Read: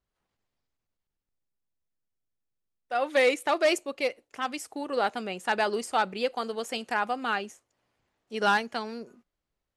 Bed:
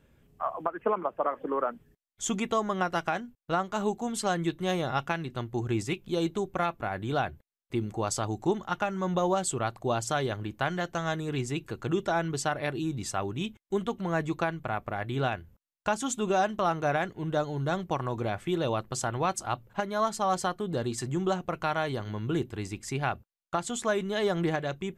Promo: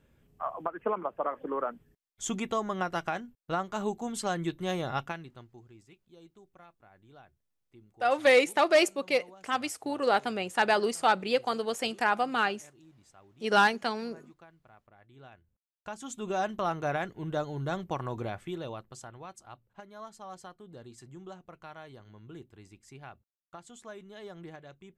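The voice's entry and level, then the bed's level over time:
5.10 s, +1.5 dB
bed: 0:05.00 −3 dB
0:05.72 −26 dB
0:15.08 −26 dB
0:16.47 −3.5 dB
0:18.19 −3.5 dB
0:19.22 −17.5 dB

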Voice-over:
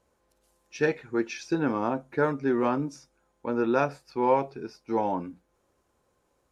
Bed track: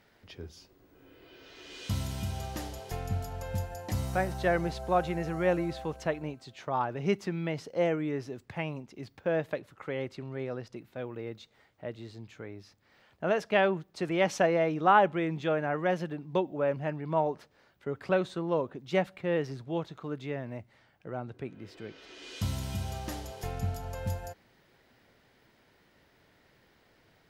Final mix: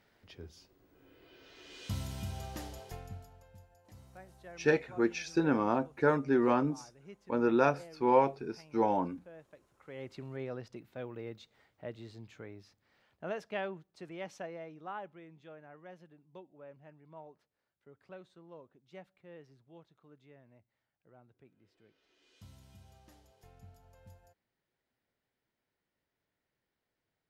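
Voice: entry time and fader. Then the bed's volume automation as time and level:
3.85 s, −2.0 dB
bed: 0:02.81 −5 dB
0:03.53 −23.5 dB
0:09.62 −23.5 dB
0:10.15 −4 dB
0:12.36 −4 dB
0:15.28 −23 dB

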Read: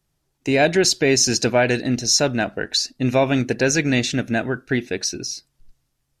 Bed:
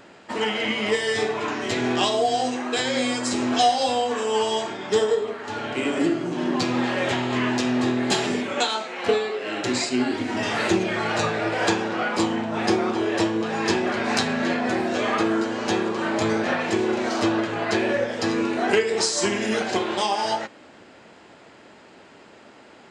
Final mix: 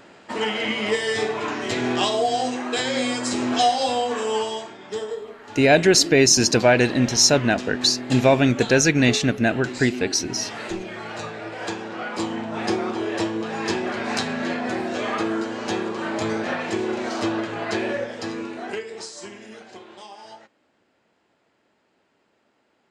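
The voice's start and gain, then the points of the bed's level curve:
5.10 s, +1.5 dB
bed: 0:04.31 0 dB
0:04.72 −9 dB
0:11.57 −9 dB
0:12.47 −2.5 dB
0:17.86 −2.5 dB
0:19.60 −18.5 dB

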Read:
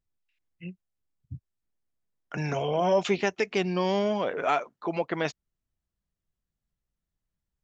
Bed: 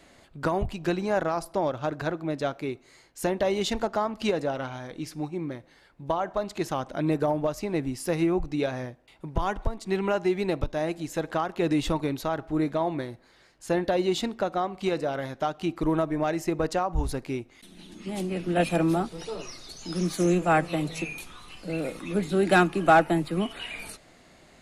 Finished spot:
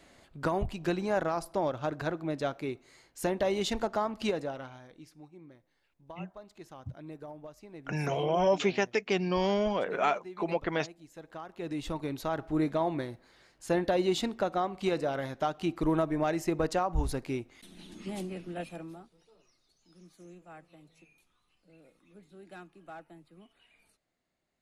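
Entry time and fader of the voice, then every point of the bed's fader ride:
5.55 s, −2.0 dB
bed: 0:04.23 −3.5 dB
0:05.22 −19.5 dB
0:11.10 −19.5 dB
0:12.40 −2.5 dB
0:18.03 −2.5 dB
0:19.24 −28.5 dB

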